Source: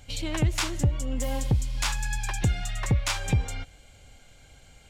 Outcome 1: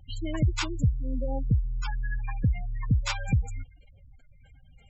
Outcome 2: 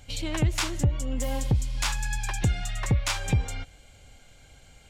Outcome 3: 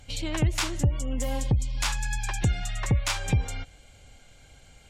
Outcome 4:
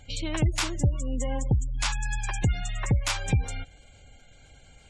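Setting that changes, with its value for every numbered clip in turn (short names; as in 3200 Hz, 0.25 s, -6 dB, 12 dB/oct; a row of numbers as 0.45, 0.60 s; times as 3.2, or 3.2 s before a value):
spectral gate, under each frame's peak: -15, -60, -45, -30 dB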